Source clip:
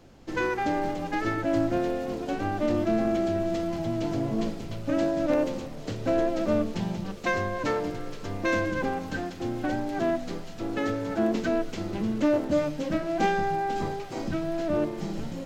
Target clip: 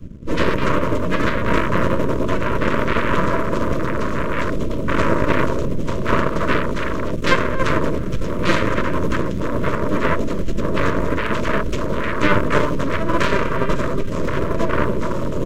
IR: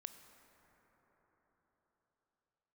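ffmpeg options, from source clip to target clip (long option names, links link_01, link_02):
-filter_complex "[0:a]equalizer=frequency=4600:width_type=o:width=0.41:gain=-8.5,acrossover=split=240|460|1800[link_01][link_02][link_03][link_04];[link_01]aeval=exprs='0.0891*sin(PI/2*7.08*val(0)/0.0891)':channel_layout=same[link_05];[link_05][link_02][link_03][link_04]amix=inputs=4:normalize=0,asplit=3[link_06][link_07][link_08];[link_07]asetrate=29433,aresample=44100,atempo=1.49831,volume=-10dB[link_09];[link_08]asetrate=66075,aresample=44100,atempo=0.66742,volume=-14dB[link_10];[link_06][link_09][link_10]amix=inputs=3:normalize=0,aeval=exprs='0.501*(cos(1*acos(clip(val(0)/0.501,-1,1)))-cos(1*PI/2))+0.158*(cos(6*acos(clip(val(0)/0.501,-1,1)))-cos(6*PI/2))+0.112*(cos(7*acos(clip(val(0)/0.501,-1,1)))-cos(7*PI/2))':channel_layout=same,asuperstop=centerf=780:order=8:qfactor=3,volume=4dB"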